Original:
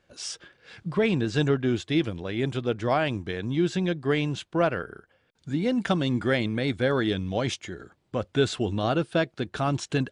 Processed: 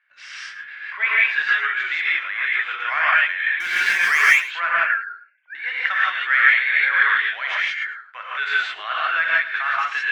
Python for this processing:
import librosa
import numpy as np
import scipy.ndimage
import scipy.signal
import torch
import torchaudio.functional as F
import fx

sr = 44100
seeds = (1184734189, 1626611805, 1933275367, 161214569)

y = fx.sine_speech(x, sr, at=(4.74, 5.55))
y = scipy.signal.sosfilt(scipy.signal.butter(4, 1200.0, 'highpass', fs=sr, output='sos'), y)
y = fx.leveller(y, sr, passes=1)
y = fx.lowpass_res(y, sr, hz=2000.0, q=3.5)
y = fx.power_curve(y, sr, exponent=0.7, at=(3.6, 4.22))
y = y + 10.0 ** (-15.5 / 20.0) * np.pad(y, (int(110 * sr / 1000.0), 0))[:len(y)]
y = fx.rev_gated(y, sr, seeds[0], gate_ms=200, shape='rising', drr_db=-6.5)